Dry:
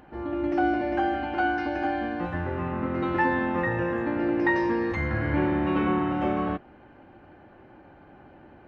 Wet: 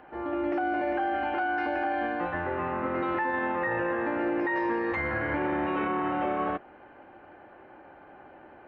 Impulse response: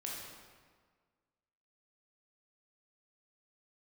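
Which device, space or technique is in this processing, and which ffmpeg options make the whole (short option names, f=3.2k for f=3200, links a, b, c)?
DJ mixer with the lows and highs turned down: -filter_complex "[0:a]acrossover=split=360 3200:gain=0.224 1 0.141[a][b][c];[a][b][c]amix=inputs=3:normalize=0,alimiter=level_in=0.5dB:limit=-24dB:level=0:latency=1:release=15,volume=-0.5dB,volume=3.5dB"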